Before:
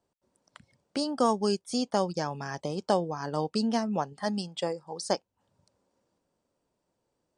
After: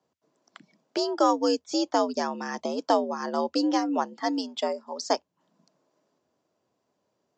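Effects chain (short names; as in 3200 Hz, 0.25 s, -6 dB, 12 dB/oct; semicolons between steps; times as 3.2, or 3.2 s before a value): downsampling 16000 Hz; frequency shift +77 Hz; gain +3 dB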